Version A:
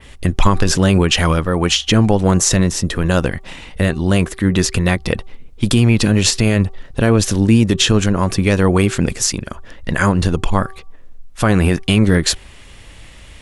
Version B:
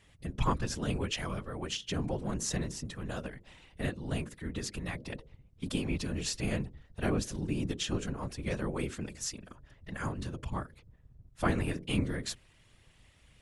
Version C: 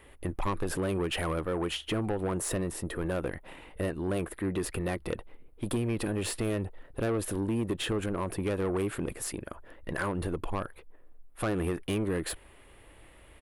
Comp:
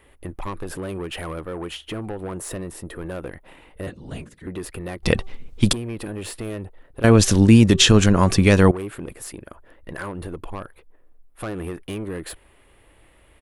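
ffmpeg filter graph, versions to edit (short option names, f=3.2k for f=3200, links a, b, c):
-filter_complex "[0:a]asplit=2[a][b];[2:a]asplit=4[c][d][e][f];[c]atrim=end=3.872[g];[1:a]atrim=start=3.868:end=4.472[h];[d]atrim=start=4.468:end=5.032[i];[a]atrim=start=5.028:end=5.732[j];[e]atrim=start=5.728:end=7.042[k];[b]atrim=start=7.038:end=8.712[l];[f]atrim=start=8.708[m];[g][h]acrossfade=d=0.004:c1=hsin:c2=hsin[n];[n][i]acrossfade=d=0.004:c1=hsin:c2=hsin[o];[o][j]acrossfade=d=0.004:c1=hsin:c2=hsin[p];[p][k]acrossfade=d=0.004:c1=hsin:c2=hsin[q];[q][l]acrossfade=d=0.004:c1=hsin:c2=hsin[r];[r][m]acrossfade=d=0.004:c1=hsin:c2=hsin"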